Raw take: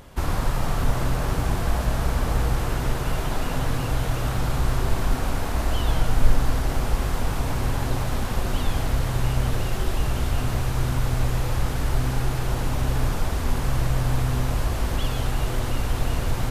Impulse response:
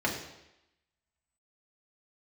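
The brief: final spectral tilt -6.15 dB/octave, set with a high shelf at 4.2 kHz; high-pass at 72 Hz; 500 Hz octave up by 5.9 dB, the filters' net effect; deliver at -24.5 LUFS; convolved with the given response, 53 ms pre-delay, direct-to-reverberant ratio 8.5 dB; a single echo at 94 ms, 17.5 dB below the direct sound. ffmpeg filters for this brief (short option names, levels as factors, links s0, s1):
-filter_complex "[0:a]highpass=72,equalizer=f=500:t=o:g=7.5,highshelf=f=4200:g=-7,aecho=1:1:94:0.133,asplit=2[s0][s1];[1:a]atrim=start_sample=2205,adelay=53[s2];[s1][s2]afir=irnorm=-1:irlink=0,volume=0.119[s3];[s0][s3]amix=inputs=2:normalize=0,volume=1.19"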